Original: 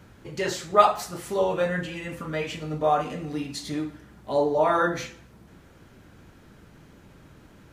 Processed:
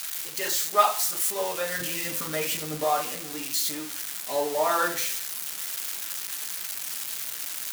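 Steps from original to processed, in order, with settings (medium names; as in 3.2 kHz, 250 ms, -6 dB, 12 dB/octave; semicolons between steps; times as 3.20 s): zero-crossing glitches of -20 dBFS; high-pass 970 Hz 6 dB/octave, from 1.80 s 250 Hz, from 2.84 s 710 Hz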